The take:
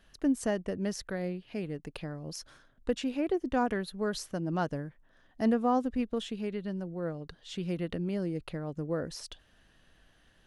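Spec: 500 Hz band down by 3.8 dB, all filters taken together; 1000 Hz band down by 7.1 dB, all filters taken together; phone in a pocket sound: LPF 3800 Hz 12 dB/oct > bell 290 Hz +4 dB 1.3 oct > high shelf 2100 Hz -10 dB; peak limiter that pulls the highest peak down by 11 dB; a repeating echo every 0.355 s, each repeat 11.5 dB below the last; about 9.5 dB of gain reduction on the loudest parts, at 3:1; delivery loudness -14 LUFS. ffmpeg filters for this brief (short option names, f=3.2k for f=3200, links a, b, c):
-af "equalizer=f=500:t=o:g=-5.5,equalizer=f=1k:t=o:g=-6.5,acompressor=threshold=-37dB:ratio=3,alimiter=level_in=10.5dB:limit=-24dB:level=0:latency=1,volume=-10.5dB,lowpass=3.8k,equalizer=f=290:t=o:w=1.3:g=4,highshelf=f=2.1k:g=-10,aecho=1:1:355|710|1065:0.266|0.0718|0.0194,volume=28dB"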